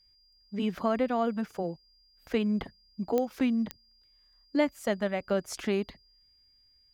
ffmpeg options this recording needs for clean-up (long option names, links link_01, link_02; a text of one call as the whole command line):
ffmpeg -i in.wav -af "adeclick=threshold=4,bandreject=frequency=4800:width=30" out.wav